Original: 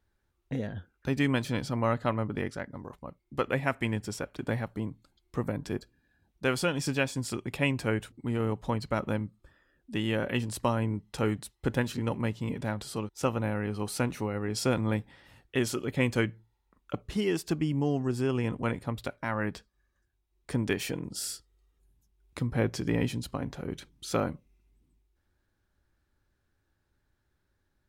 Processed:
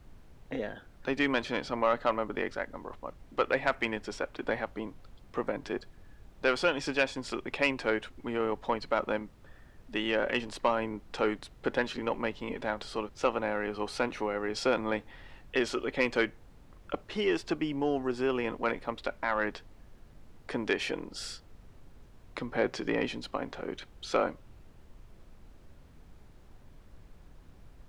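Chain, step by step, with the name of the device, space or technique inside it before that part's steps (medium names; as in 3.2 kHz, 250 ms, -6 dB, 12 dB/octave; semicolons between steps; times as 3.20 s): aircraft cabin announcement (band-pass 390–3800 Hz; saturation -19 dBFS, distortion -17 dB; brown noise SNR 17 dB); trim +4.5 dB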